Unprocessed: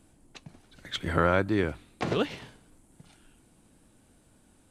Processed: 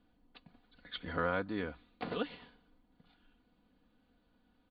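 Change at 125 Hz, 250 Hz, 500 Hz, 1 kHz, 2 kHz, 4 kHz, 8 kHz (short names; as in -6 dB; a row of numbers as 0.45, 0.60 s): -14.0 dB, -10.0 dB, -10.0 dB, -8.5 dB, -8.0 dB, -9.0 dB, under -25 dB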